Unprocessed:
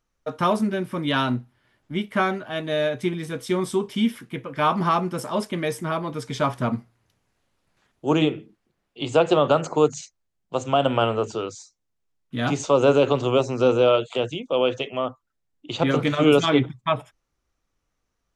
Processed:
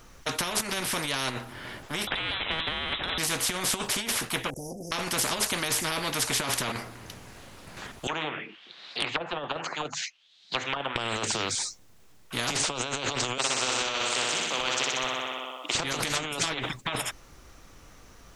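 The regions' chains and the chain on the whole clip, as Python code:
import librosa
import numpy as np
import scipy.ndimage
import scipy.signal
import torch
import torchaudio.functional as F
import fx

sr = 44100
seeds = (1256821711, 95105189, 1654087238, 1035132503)

y = fx.chain(x, sr, fx.freq_invert(carrier_hz=3700),
    fx.band_squash(depth_pct=70), at=(2.07, 3.18))
y = fx.chain(y, sr, fx.brickwall_bandstop(low_hz=560.0, high_hz=5500.0),
    fx.level_steps(step_db=21),
    fx.doppler_dist(depth_ms=0.13), at=(4.5, 4.92))
y = fx.chain(y, sr, fx.auto_wah(base_hz=580.0, top_hz=4100.0, q=5.8, full_db=-13.0, direction='down'),
    fx.air_absorb(metres=89.0),
    fx.band_squash(depth_pct=100), at=(8.07, 10.96))
y = fx.chain(y, sr, fx.highpass(hz=940.0, slope=12),
    fx.room_flutter(wall_m=10.6, rt60_s=0.93), at=(13.38, 15.75))
y = fx.over_compress(y, sr, threshold_db=-27.0, ratio=-1.0)
y = fx.spectral_comp(y, sr, ratio=4.0)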